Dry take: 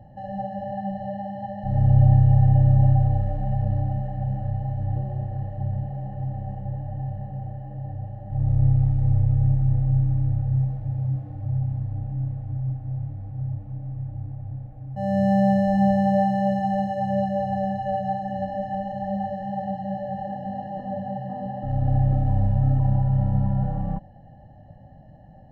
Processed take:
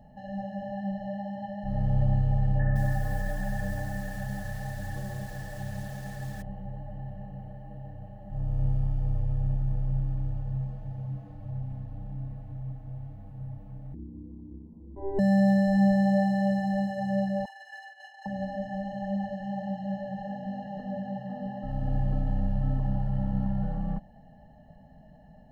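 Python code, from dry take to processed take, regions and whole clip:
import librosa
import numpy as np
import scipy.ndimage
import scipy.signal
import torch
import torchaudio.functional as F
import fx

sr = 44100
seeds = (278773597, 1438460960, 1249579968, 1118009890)

y = fx.chain(x, sr, fx.lowpass_res(hz=1700.0, q=7.4),
    fx.echo_crushed(ms=166, feedback_pct=55, bits=7, wet_db=-11), at=(2.59, 6.42))
y = fx.chain(y, sr, fx.envelope_sharpen(power=1.5),
    fx.lowpass(hz=1400.0, slope=6),
    fx.ring_mod(carrier_hz=200.0), at=(13.94, 15.19))
y = fx.chain(y, sr, fx.ellip_highpass(hz=910.0, order=4, stop_db=60),
    fx.over_compress(threshold_db=-42.0, ratio=-0.5),
    fx.doubler(ms=46.0, db=-4), at=(17.45, 18.26))
y = fx.high_shelf(y, sr, hz=2400.0, db=8.0)
y = fx.notch(y, sr, hz=2500.0, q=25.0)
y = y + 0.67 * np.pad(y, (int(4.6 * sr / 1000.0), 0))[:len(y)]
y = F.gain(torch.from_numpy(y), -5.5).numpy()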